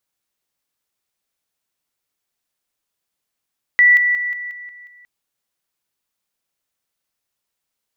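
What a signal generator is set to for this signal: level ladder 1960 Hz -7.5 dBFS, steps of -6 dB, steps 7, 0.18 s 0.00 s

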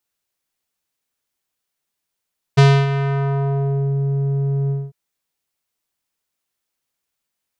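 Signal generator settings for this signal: synth note square C#3 12 dB/oct, low-pass 330 Hz, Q 1, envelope 4 oct, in 1.37 s, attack 15 ms, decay 0.28 s, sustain -11 dB, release 0.22 s, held 2.13 s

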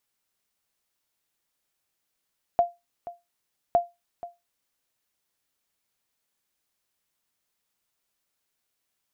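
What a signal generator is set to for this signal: sonar ping 695 Hz, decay 0.21 s, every 1.16 s, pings 2, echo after 0.48 s, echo -17 dB -12 dBFS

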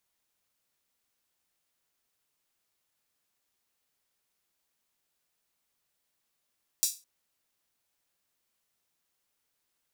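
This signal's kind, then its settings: open hi-hat length 0.21 s, high-pass 5600 Hz, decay 0.28 s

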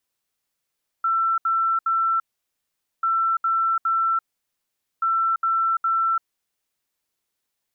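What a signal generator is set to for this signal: beep pattern sine 1340 Hz, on 0.34 s, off 0.07 s, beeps 3, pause 0.83 s, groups 3, -18 dBFS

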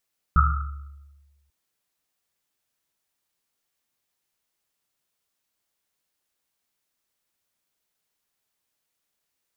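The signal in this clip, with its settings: Risset drum length 1.14 s, pitch 71 Hz, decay 1.37 s, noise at 1300 Hz, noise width 180 Hz, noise 40%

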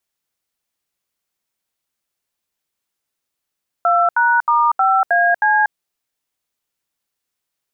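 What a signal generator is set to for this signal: DTMF "2#*5AC", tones 0.239 s, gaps 75 ms, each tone -14 dBFS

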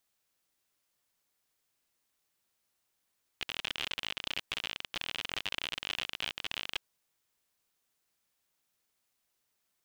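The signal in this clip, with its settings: random clicks 57/s -18.5 dBFS 3.36 s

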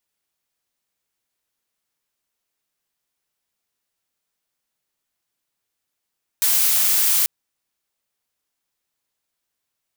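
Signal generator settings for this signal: noise blue, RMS -17.5 dBFS 0.84 s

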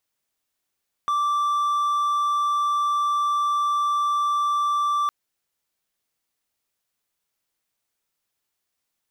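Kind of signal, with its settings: tone triangle 1170 Hz -17.5 dBFS 4.01 s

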